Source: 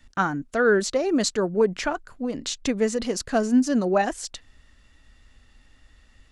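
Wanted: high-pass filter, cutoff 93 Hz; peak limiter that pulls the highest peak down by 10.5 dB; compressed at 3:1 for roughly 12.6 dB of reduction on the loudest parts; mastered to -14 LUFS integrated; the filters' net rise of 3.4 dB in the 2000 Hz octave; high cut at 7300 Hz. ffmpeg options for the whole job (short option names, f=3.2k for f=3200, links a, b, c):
-af "highpass=93,lowpass=7.3k,equalizer=f=2k:t=o:g=5,acompressor=threshold=-32dB:ratio=3,volume=23.5dB,alimiter=limit=-5.5dB:level=0:latency=1"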